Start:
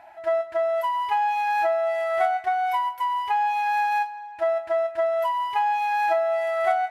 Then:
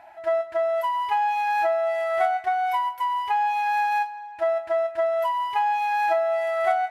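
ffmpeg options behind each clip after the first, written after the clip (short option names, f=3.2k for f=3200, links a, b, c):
-af anull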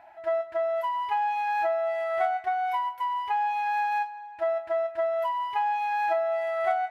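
-af "equalizer=f=10k:t=o:w=1.8:g=-7,volume=-3.5dB"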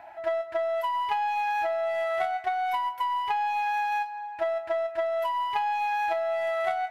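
-filter_complex "[0:a]acrossover=split=360|2500[a][b][c];[a]acompressor=threshold=-56dB:ratio=4[d];[b]acompressor=threshold=-33dB:ratio=4[e];[c]acompressor=threshold=-45dB:ratio=4[f];[d][e][f]amix=inputs=3:normalize=0,aeval=exprs='0.0841*(cos(1*acos(clip(val(0)/0.0841,-1,1)))-cos(1*PI/2))+0.0075*(cos(3*acos(clip(val(0)/0.0841,-1,1)))-cos(3*PI/2))+0.00133*(cos(4*acos(clip(val(0)/0.0841,-1,1)))-cos(4*PI/2))':c=same,volume=8dB"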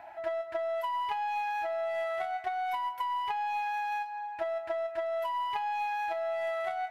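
-af "acompressor=threshold=-28dB:ratio=6,volume=-1.5dB"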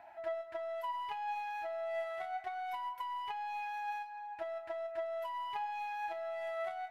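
-af "flanger=delay=4.3:depth=3.4:regen=82:speed=0.29:shape=sinusoidal,volume=-2.5dB"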